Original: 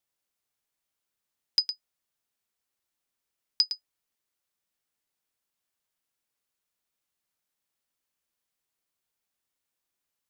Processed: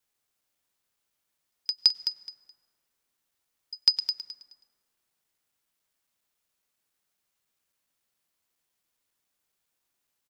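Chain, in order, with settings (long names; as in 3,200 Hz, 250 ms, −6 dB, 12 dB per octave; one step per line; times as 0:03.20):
slices reordered back to front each 138 ms, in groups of 5
repeating echo 212 ms, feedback 21%, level −9 dB
on a send at −20 dB: convolution reverb RT60 2.4 s, pre-delay 88 ms
on the sum: level +4 dB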